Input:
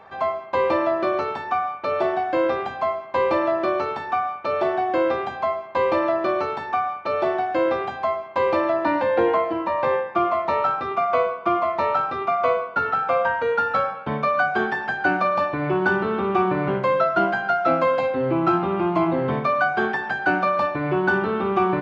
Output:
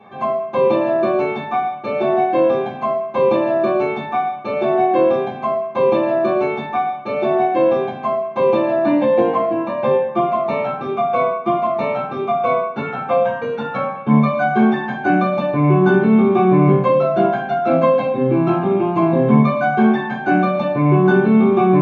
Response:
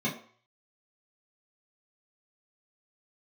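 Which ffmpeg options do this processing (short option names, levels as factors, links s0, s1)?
-filter_complex "[1:a]atrim=start_sample=2205[s0];[0:a][s0]afir=irnorm=-1:irlink=0,volume=0.531"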